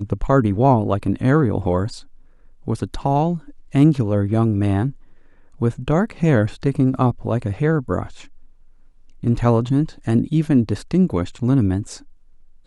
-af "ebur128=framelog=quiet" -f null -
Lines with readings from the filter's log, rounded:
Integrated loudness:
  I:         -19.6 LUFS
  Threshold: -30.5 LUFS
Loudness range:
  LRA:         2.1 LU
  Threshold: -40.7 LUFS
  LRA low:   -21.8 LUFS
  LRA high:  -19.7 LUFS